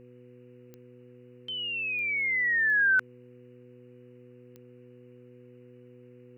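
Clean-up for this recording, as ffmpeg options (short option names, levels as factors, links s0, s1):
-af "adeclick=t=4,bandreject=f=123.5:t=h:w=4,bandreject=f=247:t=h:w=4,bandreject=f=370.5:t=h:w=4,bandreject=f=494:t=h:w=4,agate=range=0.0891:threshold=0.00562"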